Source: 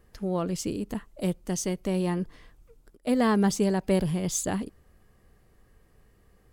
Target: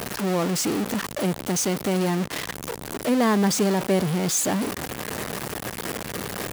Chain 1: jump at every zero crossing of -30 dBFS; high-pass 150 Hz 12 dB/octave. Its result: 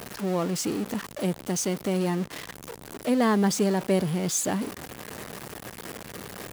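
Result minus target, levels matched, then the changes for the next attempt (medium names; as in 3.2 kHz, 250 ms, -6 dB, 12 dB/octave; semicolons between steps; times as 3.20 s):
jump at every zero crossing: distortion -6 dB
change: jump at every zero crossing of -21.5 dBFS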